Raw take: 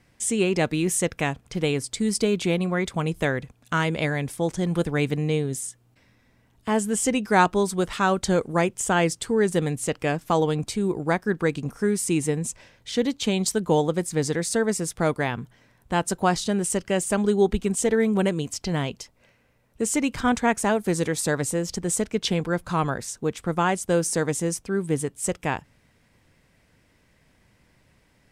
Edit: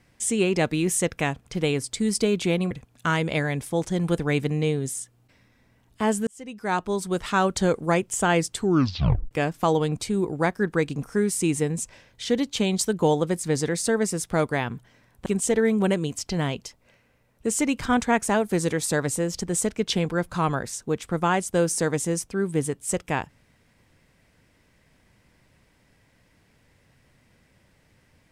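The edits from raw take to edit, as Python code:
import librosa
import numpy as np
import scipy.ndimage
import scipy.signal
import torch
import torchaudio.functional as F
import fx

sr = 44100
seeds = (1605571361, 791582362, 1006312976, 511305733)

y = fx.edit(x, sr, fx.cut(start_s=2.71, length_s=0.67),
    fx.fade_in_span(start_s=6.94, length_s=1.07),
    fx.tape_stop(start_s=9.24, length_s=0.74),
    fx.cut(start_s=15.93, length_s=1.68), tone=tone)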